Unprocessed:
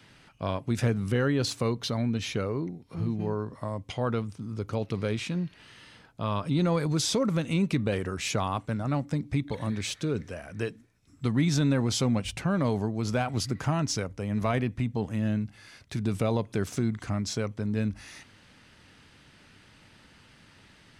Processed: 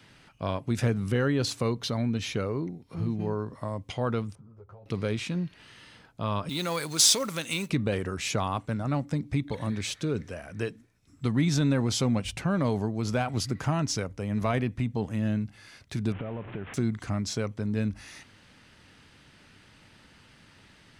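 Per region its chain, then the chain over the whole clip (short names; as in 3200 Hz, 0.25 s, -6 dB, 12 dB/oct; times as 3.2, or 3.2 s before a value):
4.35–4.86 EQ curve 130 Hz 0 dB, 270 Hz -15 dB, 400 Hz -3 dB, 690 Hz +3 dB, 1300 Hz -3 dB, 3500 Hz -21 dB + compressor, threshold -43 dBFS + ensemble effect
6.49–7.7 tilt +4 dB/oct + short-mantissa float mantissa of 2-bit
16.12–16.74 delta modulation 16 kbps, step -35.5 dBFS + compressor 12:1, threshold -30 dBFS + air absorption 60 m
whole clip: dry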